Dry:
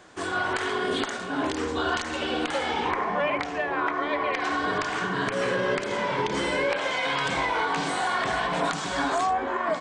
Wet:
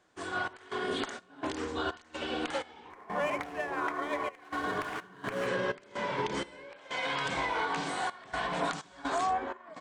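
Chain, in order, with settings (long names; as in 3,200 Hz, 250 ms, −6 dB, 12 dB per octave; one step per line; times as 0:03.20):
0:02.90–0:05.47: running median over 9 samples
gate pattern "xx.xx.xx.xx..xxx" 63 BPM −12 dB
expander for the loud parts 1.5 to 1, over −48 dBFS
level −4.5 dB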